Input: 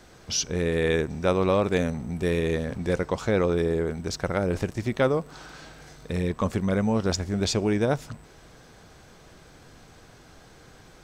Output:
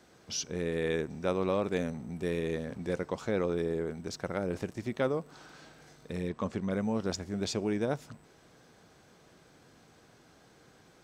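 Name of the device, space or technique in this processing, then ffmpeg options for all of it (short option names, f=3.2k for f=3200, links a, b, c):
filter by subtraction: -filter_complex "[0:a]asettb=1/sr,asplit=3[a][b][c];[a]atrim=end=6.294[d];[b]atrim=start=6.29:end=6.71,asetpts=PTS-STARTPTS,afade=t=in:d=0.004:c=qsin,afade=t=out:st=0.416:d=0.004:c=qsin,lowpass=6.9k[e];[c]atrim=start=6.706[f];[d][e]acrossfade=d=0.004:c1=hsin:c2=qsin[g];[g][f]acrossfade=d=0.004:c1=qsin:c2=hsin,asplit=2[h][i];[i]lowpass=220,volume=-1[j];[h][j]amix=inputs=2:normalize=0,volume=-8.5dB"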